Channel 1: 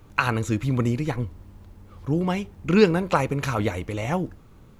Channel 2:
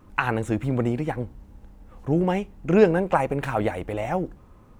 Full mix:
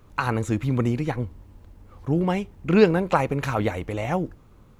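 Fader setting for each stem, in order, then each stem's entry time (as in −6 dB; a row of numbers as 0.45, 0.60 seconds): −4.0, −6.5 decibels; 0.00, 0.00 seconds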